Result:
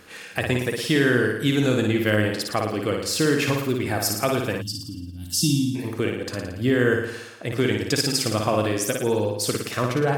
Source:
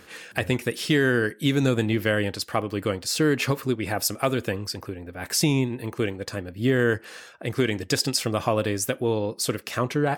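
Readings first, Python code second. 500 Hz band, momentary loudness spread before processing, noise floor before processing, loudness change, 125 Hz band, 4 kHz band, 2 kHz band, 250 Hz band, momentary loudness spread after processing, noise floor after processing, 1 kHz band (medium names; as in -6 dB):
+2.0 dB, 9 LU, -49 dBFS, +2.0 dB, +1.5 dB, +2.0 dB, +2.0 dB, +2.0 dB, 9 LU, -39 dBFS, +1.5 dB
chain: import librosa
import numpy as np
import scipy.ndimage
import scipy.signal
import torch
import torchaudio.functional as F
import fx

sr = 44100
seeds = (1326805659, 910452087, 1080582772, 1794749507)

y = fx.room_flutter(x, sr, wall_m=9.7, rt60_s=0.8)
y = fx.spec_box(y, sr, start_s=4.62, length_s=1.13, low_hz=340.0, high_hz=2700.0, gain_db=-26)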